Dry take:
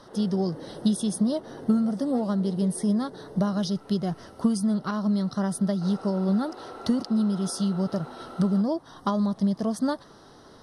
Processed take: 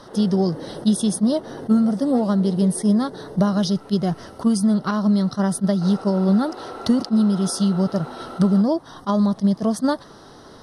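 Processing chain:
level that may rise only so fast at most 480 dB per second
level +6.5 dB

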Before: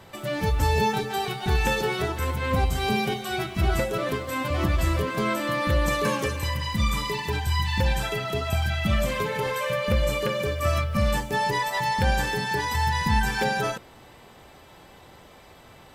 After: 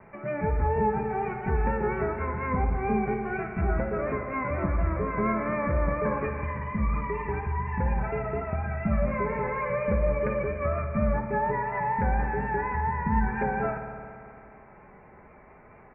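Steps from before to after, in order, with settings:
Butterworth low-pass 2,400 Hz 96 dB per octave
treble cut that deepens with the level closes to 1,700 Hz, closed at −20.5 dBFS
comb filter 4.8 ms, depth 36%
pitch vibrato 4.2 Hz 44 cents
spring reverb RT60 2.4 s, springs 55 ms, chirp 75 ms, DRR 6.5 dB
level −3 dB

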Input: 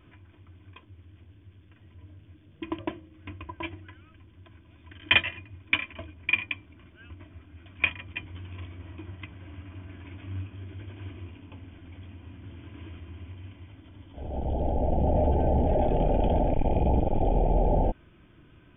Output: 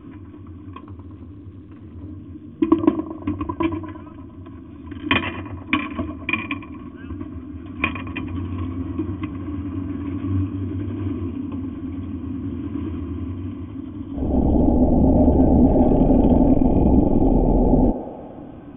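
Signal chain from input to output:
tilt shelving filter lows +5 dB, about 1,100 Hz
downward compressor, threshold −22 dBFS, peak gain reduction 8 dB
hollow resonant body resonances 260/1,100 Hz, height 14 dB, ringing for 30 ms
on a send: feedback echo with a band-pass in the loop 115 ms, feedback 73%, band-pass 680 Hz, level −9 dB
0:00.82–0:02.10: on the sum: highs frequency-modulated by the lows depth 0.41 ms
level +5.5 dB

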